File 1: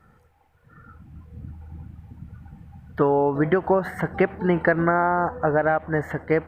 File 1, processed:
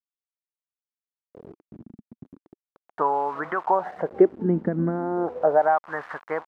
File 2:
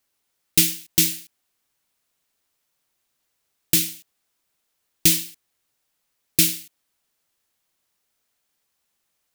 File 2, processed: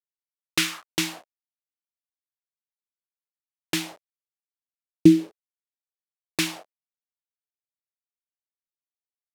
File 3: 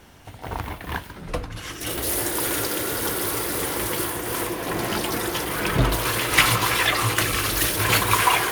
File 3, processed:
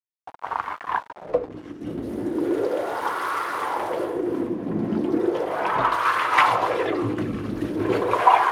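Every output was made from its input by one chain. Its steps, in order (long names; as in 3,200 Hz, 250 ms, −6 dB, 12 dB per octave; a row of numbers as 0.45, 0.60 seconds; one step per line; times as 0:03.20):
centre clipping without the shift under −34.5 dBFS
LFO wah 0.37 Hz 220–1,200 Hz, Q 3
loudness normalisation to −24 LKFS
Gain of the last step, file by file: +6.5, +17.5, +11.0 decibels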